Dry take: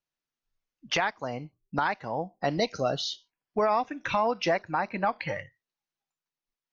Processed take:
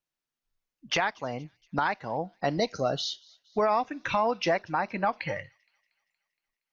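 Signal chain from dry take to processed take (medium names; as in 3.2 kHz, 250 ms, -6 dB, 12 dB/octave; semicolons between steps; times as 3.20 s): 2.50–2.92 s: peaking EQ 2.7 kHz -5 dB 0.73 oct; on a send: feedback echo behind a high-pass 234 ms, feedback 55%, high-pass 3.3 kHz, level -23 dB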